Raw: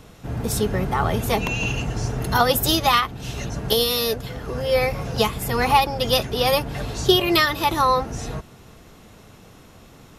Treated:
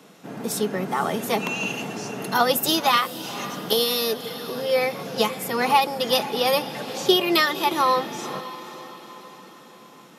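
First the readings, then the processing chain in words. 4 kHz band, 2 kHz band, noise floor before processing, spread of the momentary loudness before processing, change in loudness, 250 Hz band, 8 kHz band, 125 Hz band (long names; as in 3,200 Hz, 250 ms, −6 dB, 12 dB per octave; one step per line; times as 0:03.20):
−1.5 dB, −1.5 dB, −48 dBFS, 12 LU, −1.5 dB, −1.5 dB, −1.5 dB, −12.5 dB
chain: Butterworth high-pass 170 Hz 36 dB per octave
on a send: feedback delay with all-pass diffusion 508 ms, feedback 50%, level −14 dB
on the sum: level −1.5 dB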